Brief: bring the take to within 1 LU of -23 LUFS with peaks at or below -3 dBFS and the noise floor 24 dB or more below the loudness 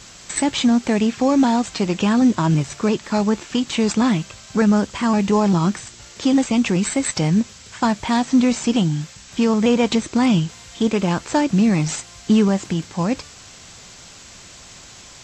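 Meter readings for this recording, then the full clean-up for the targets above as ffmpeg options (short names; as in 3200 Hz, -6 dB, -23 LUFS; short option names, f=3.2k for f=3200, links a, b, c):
noise floor -43 dBFS; noise floor target -44 dBFS; loudness -19.5 LUFS; peak -5.5 dBFS; loudness target -23.0 LUFS
-> -af "afftdn=nr=6:nf=-43"
-af "volume=-3.5dB"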